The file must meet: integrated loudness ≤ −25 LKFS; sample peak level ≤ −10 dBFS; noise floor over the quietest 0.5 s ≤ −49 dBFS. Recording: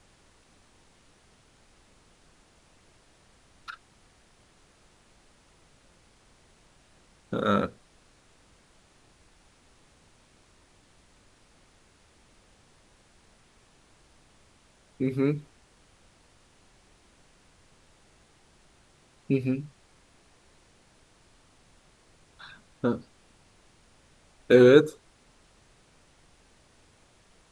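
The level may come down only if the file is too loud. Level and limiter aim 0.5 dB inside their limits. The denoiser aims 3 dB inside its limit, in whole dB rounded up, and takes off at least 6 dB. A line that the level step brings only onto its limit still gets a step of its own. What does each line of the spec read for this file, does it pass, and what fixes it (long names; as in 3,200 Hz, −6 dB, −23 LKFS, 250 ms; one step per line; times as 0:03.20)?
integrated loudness −24.5 LKFS: out of spec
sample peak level −4.5 dBFS: out of spec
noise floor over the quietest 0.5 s −61 dBFS: in spec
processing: level −1 dB
brickwall limiter −10.5 dBFS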